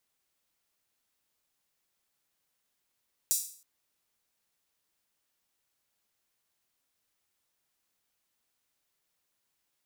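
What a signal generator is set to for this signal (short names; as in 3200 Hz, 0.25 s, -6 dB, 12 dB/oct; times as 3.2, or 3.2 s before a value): open hi-hat length 0.32 s, high-pass 6700 Hz, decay 0.48 s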